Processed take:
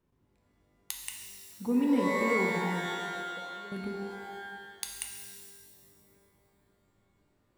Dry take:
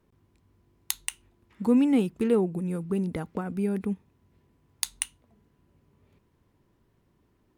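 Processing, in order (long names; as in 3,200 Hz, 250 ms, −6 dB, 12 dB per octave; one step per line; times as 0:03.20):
0:02.86–0:03.72: formant resonators in series e
reverb with rising layers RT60 1.7 s, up +12 semitones, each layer −2 dB, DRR 1.5 dB
level −8.5 dB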